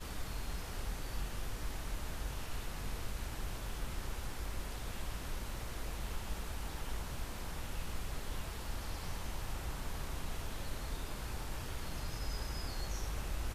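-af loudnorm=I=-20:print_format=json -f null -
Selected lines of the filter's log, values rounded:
"input_i" : "-43.1",
"input_tp" : "-26.2",
"input_lra" : "1.3",
"input_thresh" : "-53.1",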